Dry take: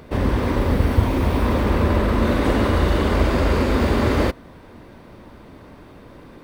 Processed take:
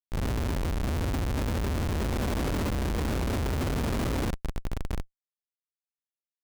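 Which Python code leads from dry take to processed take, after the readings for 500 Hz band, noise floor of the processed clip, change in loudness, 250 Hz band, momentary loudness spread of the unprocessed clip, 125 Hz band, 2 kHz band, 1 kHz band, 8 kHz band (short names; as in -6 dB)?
-12.5 dB, under -85 dBFS, -10.5 dB, -11.0 dB, 2 LU, -8.5 dB, -10.5 dB, -11.5 dB, -0.5 dB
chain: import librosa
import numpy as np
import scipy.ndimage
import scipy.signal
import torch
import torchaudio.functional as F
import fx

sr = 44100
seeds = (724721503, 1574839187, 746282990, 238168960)

y = x + 10.0 ** (-7.5 / 20.0) * np.pad(x, (int(733 * sr / 1000.0), 0))[:len(x)]
y = fx.schmitt(y, sr, flips_db=-17.5)
y = F.gain(torch.from_numpy(y), -8.5).numpy()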